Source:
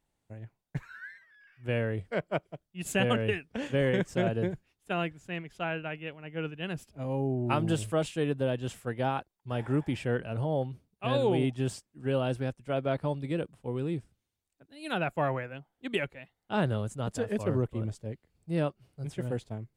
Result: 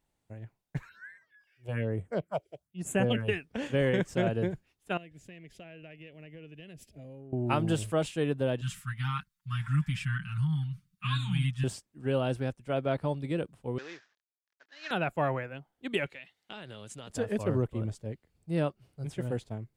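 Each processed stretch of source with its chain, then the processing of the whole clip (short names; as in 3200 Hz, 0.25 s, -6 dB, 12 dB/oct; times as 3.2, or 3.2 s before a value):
0.89–3.28 HPF 68 Hz + phaser stages 4, 1.1 Hz, lowest notch 170–4700 Hz
4.97–7.33 band shelf 1100 Hz -12.5 dB 1.1 oct + compressor 16:1, threshold -43 dBFS
8.61–11.64 elliptic band-stop 200–1200 Hz, stop band 50 dB + comb 6.5 ms, depth 99%
13.78–14.91 CVSD 32 kbps + HPF 750 Hz + bell 1700 Hz +12.5 dB 0.41 oct
16.06–17.1 weighting filter D + compressor 8:1, threshold -40 dBFS
whole clip: dry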